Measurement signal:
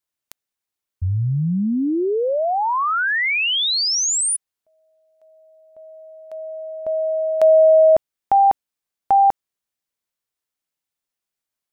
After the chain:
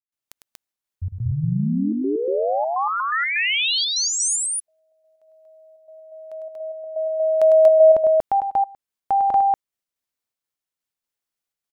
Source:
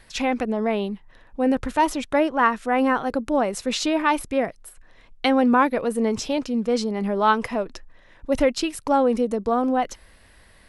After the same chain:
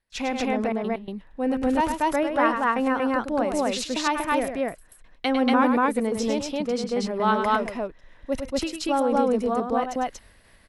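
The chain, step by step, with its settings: step gate ".xxxxx.xx.xxxxxx" 125 bpm -24 dB; loudspeakers at several distances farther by 35 m -7 dB, 81 m 0 dB; gain -4.5 dB

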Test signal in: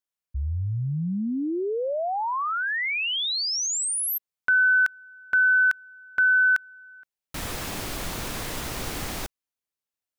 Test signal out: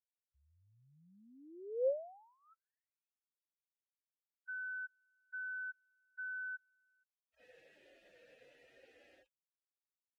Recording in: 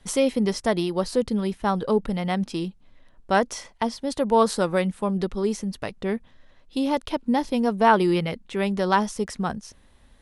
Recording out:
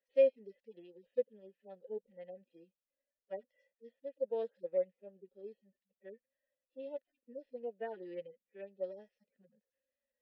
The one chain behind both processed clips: median-filter separation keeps harmonic; vowel filter e; upward expander 1.5:1, over -49 dBFS; gain -2.5 dB

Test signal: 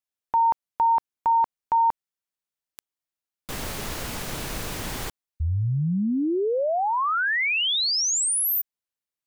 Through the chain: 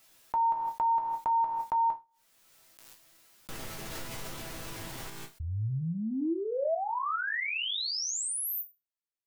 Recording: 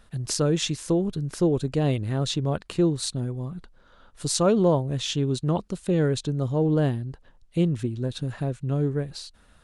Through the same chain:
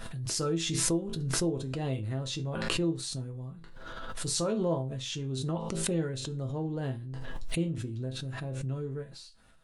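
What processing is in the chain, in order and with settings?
resonator bank A2 minor, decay 0.23 s; backwards sustainer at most 24 dB/s; gain +2 dB

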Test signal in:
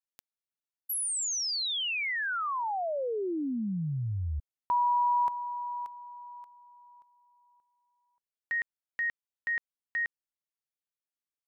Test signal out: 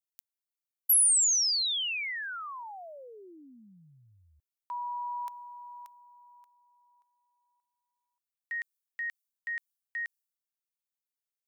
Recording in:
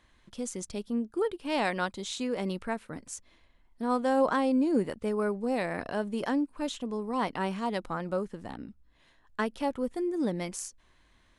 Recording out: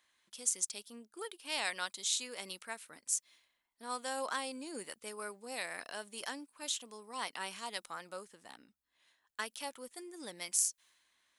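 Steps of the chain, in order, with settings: differentiator; mismatched tape noise reduction decoder only; gain +7.5 dB

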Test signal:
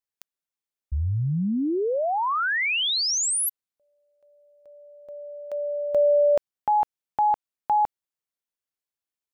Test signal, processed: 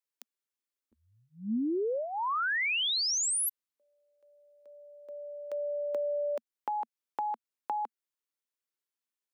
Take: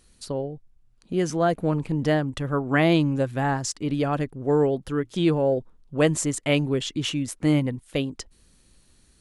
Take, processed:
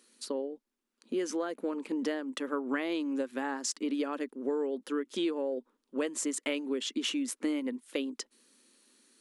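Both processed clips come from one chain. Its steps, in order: elliptic high-pass 230 Hz, stop band 40 dB; compressor 6:1, threshold -27 dBFS; bell 710 Hz -9.5 dB 0.36 oct; gain -1 dB

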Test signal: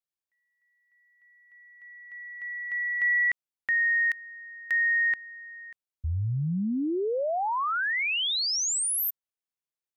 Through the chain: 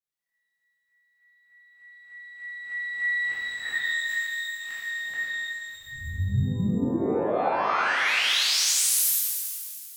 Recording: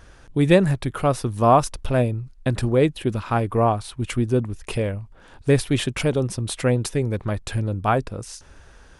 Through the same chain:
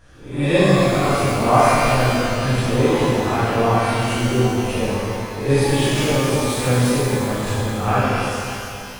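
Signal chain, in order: spectral swells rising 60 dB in 0.49 s; shimmer reverb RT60 2.3 s, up +12 st, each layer -8 dB, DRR -11 dB; gain -9.5 dB

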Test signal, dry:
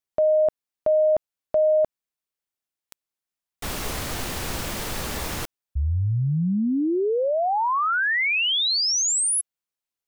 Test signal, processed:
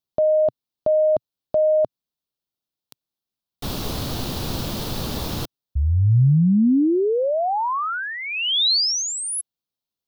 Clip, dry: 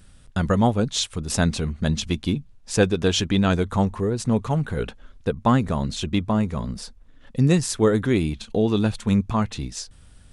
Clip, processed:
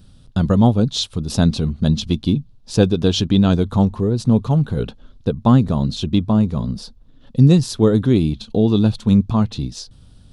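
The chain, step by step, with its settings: graphic EQ 125/250/2000/4000/8000 Hz +6/+4/-11/+7/-8 dB; gain +1.5 dB

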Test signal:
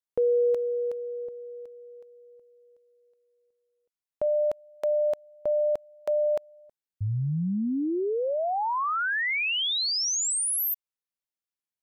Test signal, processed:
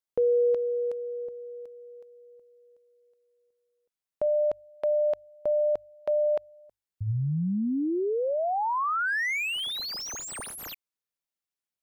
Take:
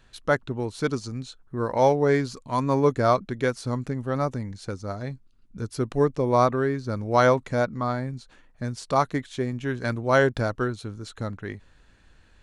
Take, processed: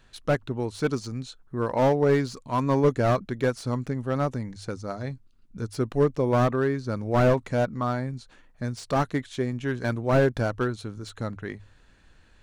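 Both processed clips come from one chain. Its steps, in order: notches 50/100 Hz; slew limiter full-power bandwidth 91 Hz

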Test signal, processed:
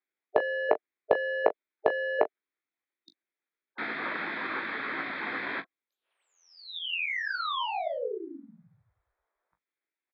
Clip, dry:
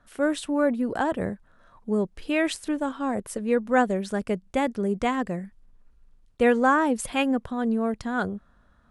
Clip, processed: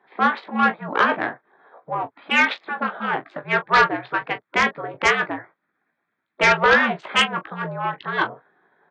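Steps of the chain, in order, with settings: Wiener smoothing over 15 samples; mistuned SSB -66 Hz 530–3300 Hz; spectral gate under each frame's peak -10 dB weak; early reflections 18 ms -7 dB, 40 ms -15 dB; sine folder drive 15 dB, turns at -8 dBFS

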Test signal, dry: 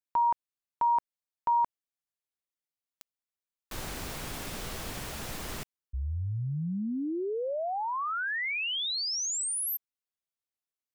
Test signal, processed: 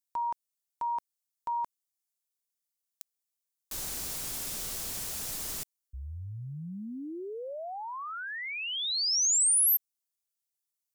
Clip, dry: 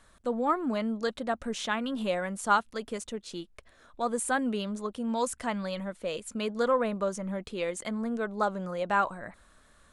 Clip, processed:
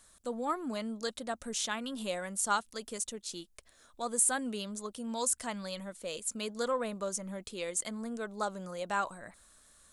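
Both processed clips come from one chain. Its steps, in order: tone controls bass -1 dB, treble +15 dB; gain -6.5 dB

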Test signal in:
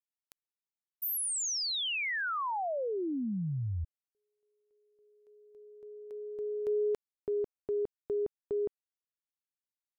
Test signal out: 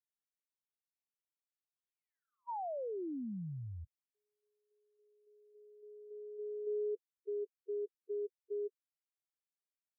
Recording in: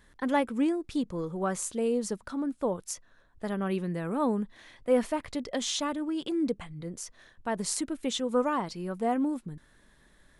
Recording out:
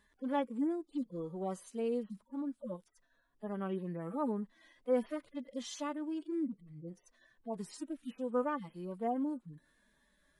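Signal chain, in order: median-filter separation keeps harmonic; low shelf 82 Hz -11 dB; gain -6 dB

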